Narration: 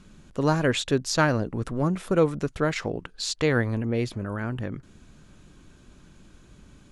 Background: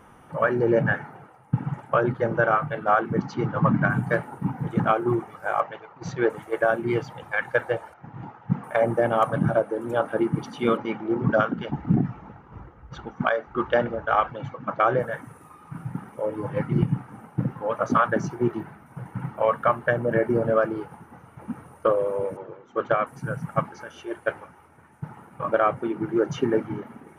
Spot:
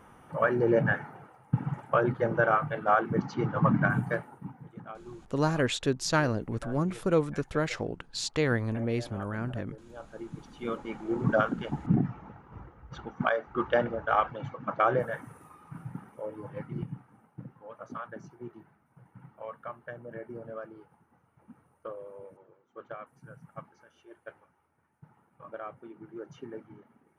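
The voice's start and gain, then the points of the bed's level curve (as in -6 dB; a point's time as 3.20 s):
4.95 s, -4.0 dB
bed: 3.98 s -3.5 dB
4.80 s -22.5 dB
9.93 s -22.5 dB
11.25 s -4 dB
15.39 s -4 dB
17.54 s -19.5 dB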